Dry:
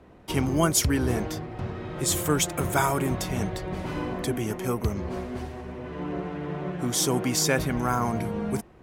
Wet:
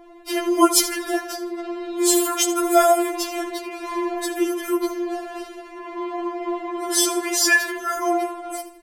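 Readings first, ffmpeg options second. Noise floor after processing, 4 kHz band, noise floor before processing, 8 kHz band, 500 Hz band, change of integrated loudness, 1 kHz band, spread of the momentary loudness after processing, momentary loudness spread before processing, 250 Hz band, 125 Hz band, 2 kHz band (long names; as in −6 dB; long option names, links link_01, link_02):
−41 dBFS, +6.5 dB, −51 dBFS, +5.5 dB, +6.5 dB, +5.5 dB, +7.0 dB, 15 LU, 11 LU, +4.5 dB, below −40 dB, +8.5 dB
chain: -filter_complex "[0:a]asplit=2[link_01][link_02];[link_02]aecho=0:1:79|158|237:0.2|0.0718|0.0259[link_03];[link_01][link_03]amix=inputs=2:normalize=0,afftfilt=real='re*4*eq(mod(b,16),0)':imag='im*4*eq(mod(b,16),0)':win_size=2048:overlap=0.75,volume=8.5dB"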